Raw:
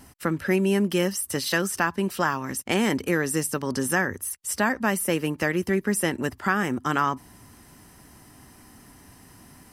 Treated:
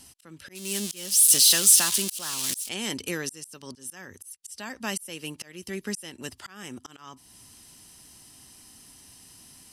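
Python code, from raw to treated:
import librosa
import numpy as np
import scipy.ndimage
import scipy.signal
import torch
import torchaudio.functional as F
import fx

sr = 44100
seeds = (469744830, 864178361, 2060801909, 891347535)

y = fx.crossing_spikes(x, sr, level_db=-15.0, at=(0.55, 2.69))
y = fx.band_shelf(y, sr, hz=5500.0, db=14.0, octaves=2.4)
y = fx.auto_swell(y, sr, attack_ms=432.0)
y = y * librosa.db_to_amplitude(-8.5)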